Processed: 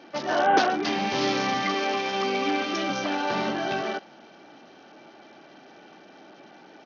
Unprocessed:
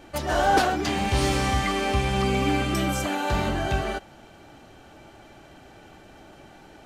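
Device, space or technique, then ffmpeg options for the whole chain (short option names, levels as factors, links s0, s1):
Bluetooth headset: -filter_complex "[0:a]asettb=1/sr,asplit=3[s0][s1][s2];[s0]atrim=end=1.744[s3];[s1]atrim=start=1.74:end=2.9,asetpts=PTS-STARTPTS,afade=t=in:d=0.004:c=qsin,afade=t=out:st=1.156:d=0.004:c=qsin,highpass=280[s4];[s2]atrim=start=2.896[s5];[s3][s4]acrossfade=d=0.004:c1=hsin:c2=qsin[s6];[s6][s5]acrossfade=d=0.004:c1=qsin:c2=hsin,highpass=f=190:w=0.5412,highpass=f=190:w=1.3066,aresample=16000,aresample=44100" -ar 48000 -c:a sbc -b:a 64k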